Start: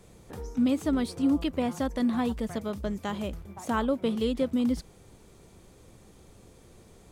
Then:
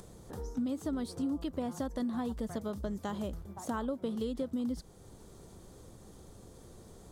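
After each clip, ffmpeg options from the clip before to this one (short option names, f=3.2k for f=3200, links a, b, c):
-af "acompressor=threshold=-30dB:ratio=4,equalizer=f=2.4k:w=2.2:g=-10.5,acompressor=mode=upward:threshold=-44dB:ratio=2.5,volume=-2dB"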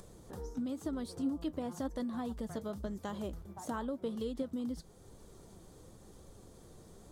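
-af "flanger=delay=1.7:depth=5:regen=72:speed=0.96:shape=sinusoidal,volume=2dB"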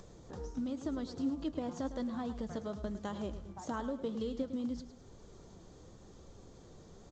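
-af "aecho=1:1:106|212|318|424:0.251|0.0904|0.0326|0.0117" -ar 16000 -c:a pcm_mulaw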